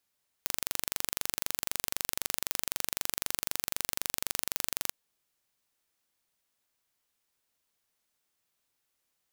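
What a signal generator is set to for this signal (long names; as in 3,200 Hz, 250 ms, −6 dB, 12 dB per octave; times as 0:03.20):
impulse train 23.9 per second, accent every 0, −2.5 dBFS 4.46 s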